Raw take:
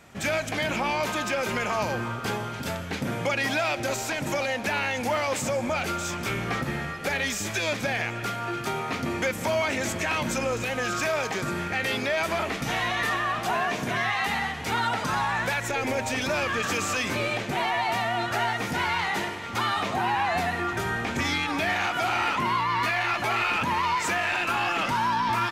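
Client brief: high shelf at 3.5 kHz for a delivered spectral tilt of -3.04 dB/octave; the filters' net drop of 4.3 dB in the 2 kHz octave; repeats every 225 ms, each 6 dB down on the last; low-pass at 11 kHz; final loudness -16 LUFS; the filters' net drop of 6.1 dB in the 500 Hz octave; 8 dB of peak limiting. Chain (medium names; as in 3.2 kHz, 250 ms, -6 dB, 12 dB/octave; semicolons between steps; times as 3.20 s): low-pass 11 kHz; peaking EQ 500 Hz -8 dB; peaking EQ 2 kHz -7 dB; treble shelf 3.5 kHz +6.5 dB; peak limiter -24 dBFS; feedback delay 225 ms, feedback 50%, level -6 dB; trim +15.5 dB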